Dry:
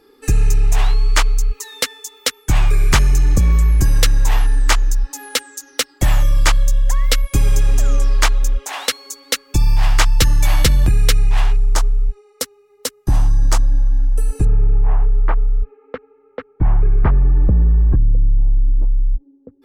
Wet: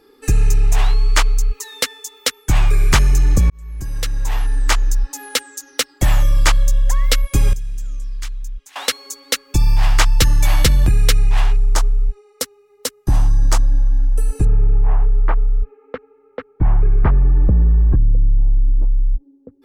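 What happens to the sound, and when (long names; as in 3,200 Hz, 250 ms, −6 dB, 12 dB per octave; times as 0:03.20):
0:03.50–0:04.96: fade in
0:07.53–0:08.76: guitar amp tone stack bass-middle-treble 6-0-2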